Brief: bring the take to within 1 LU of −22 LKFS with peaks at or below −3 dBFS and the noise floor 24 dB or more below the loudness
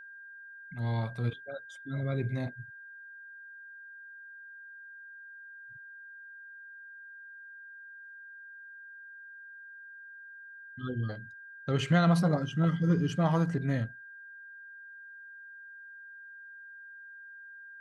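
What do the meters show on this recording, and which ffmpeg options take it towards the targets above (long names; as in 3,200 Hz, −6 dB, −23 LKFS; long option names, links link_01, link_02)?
interfering tone 1,600 Hz; level of the tone −46 dBFS; integrated loudness −30.5 LKFS; sample peak −14.0 dBFS; target loudness −22.0 LKFS
→ -af "bandreject=frequency=1600:width=30"
-af "volume=8.5dB"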